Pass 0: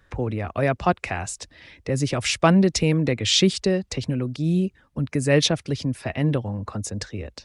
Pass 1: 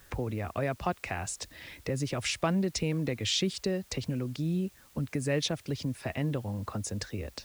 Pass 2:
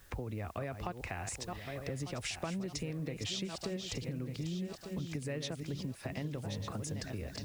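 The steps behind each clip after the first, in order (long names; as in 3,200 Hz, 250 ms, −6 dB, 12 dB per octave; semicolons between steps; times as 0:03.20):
downward compressor 2 to 1, threshold −35 dBFS, peak gain reduction 12.5 dB; bit-depth reduction 10 bits, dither triangular
feedback delay that plays each chunk backwards 599 ms, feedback 56%, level −8 dB; low-shelf EQ 72 Hz +5.5 dB; downward compressor, threshold −31 dBFS, peak gain reduction 9 dB; level −4 dB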